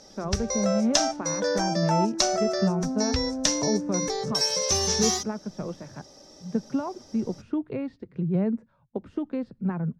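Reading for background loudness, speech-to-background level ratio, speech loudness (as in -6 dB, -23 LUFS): -25.5 LUFS, -5.0 dB, -30.5 LUFS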